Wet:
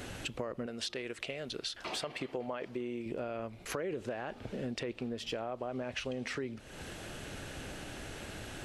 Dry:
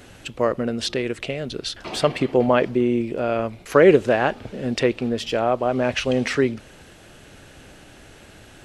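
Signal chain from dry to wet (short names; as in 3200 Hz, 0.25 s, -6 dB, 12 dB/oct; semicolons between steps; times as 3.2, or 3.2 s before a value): 0.66–3.06 low shelf 370 Hz -10 dB; limiter -12.5 dBFS, peak gain reduction 10 dB; compressor 5:1, threshold -39 dBFS, peak gain reduction 19 dB; gain +2 dB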